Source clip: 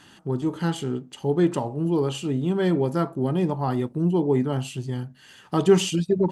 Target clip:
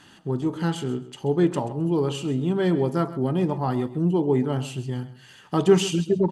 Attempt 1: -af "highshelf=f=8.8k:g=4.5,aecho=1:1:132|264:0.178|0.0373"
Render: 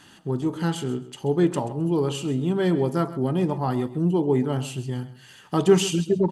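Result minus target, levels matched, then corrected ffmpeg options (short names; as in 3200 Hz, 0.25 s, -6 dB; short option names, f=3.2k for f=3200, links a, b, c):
8000 Hz band +2.5 dB
-af "highshelf=f=8.8k:g=-3,aecho=1:1:132|264:0.178|0.0373"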